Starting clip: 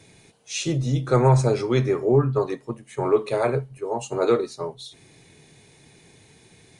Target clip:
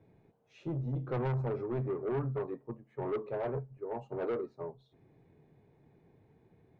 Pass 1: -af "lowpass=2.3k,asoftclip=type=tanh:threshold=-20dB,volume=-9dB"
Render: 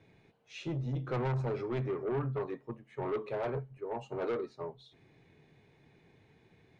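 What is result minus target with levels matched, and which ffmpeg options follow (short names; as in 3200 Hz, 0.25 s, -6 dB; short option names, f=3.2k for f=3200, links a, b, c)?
2000 Hz band +3.5 dB
-af "lowpass=960,asoftclip=type=tanh:threshold=-20dB,volume=-9dB"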